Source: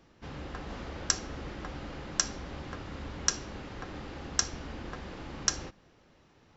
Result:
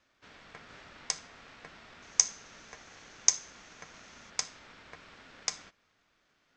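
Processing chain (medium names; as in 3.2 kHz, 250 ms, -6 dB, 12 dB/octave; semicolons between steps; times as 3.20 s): high-pass 680 Hz 24 dB/octave; ring modulator 590 Hz; 2.02–4.30 s: peaking EQ 6.3 kHz +13.5 dB 0.4 oct; trim -2 dB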